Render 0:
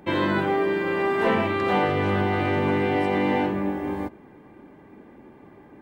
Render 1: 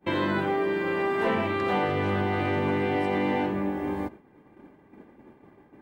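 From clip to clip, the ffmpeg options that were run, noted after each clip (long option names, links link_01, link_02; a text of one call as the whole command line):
ffmpeg -i in.wav -af "acompressor=threshold=-40dB:ratio=1.5,agate=range=-33dB:threshold=-40dB:ratio=3:detection=peak,volume=4dB" out.wav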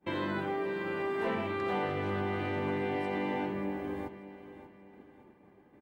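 ffmpeg -i in.wav -af "aecho=1:1:585|1170|1755|2340:0.2|0.0798|0.0319|0.0128,volume=-7.5dB" out.wav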